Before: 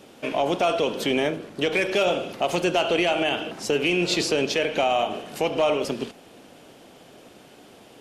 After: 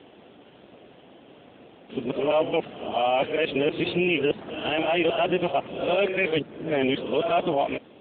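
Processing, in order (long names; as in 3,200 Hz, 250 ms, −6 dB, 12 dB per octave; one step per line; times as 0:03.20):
played backwards from end to start
AMR narrowband 7.95 kbit/s 8,000 Hz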